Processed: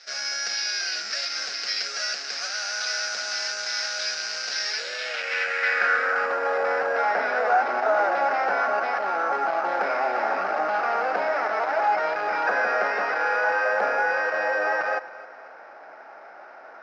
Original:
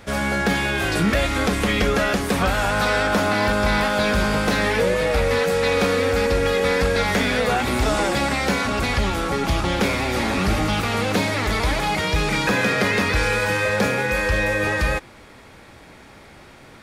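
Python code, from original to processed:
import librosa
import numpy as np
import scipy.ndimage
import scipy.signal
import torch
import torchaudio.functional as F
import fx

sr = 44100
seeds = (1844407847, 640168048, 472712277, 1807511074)

p1 = 10.0 ** (-23.0 / 20.0) * (np.abs((x / 10.0 ** (-23.0 / 20.0) + 3.0) % 4.0 - 2.0) - 1.0)
p2 = x + F.gain(torch.from_numpy(p1), -4.0).numpy()
p3 = np.repeat(p2[::6], 6)[:len(p2)]
p4 = fx.air_absorb(p3, sr, metres=68.0)
p5 = p4 + fx.echo_feedback(p4, sr, ms=267, feedback_pct=43, wet_db=-18, dry=0)
p6 = fx.filter_sweep_bandpass(p5, sr, from_hz=5000.0, to_hz=900.0, start_s=4.64, end_s=6.5, q=2.4)
p7 = fx.cabinet(p6, sr, low_hz=370.0, low_slope=12, high_hz=7100.0, hz=(660.0, 1000.0, 1500.0, 3400.0, 5200.0), db=(6, -9, 9, -9, 6))
y = F.gain(torch.from_numpy(p7), 4.5).numpy()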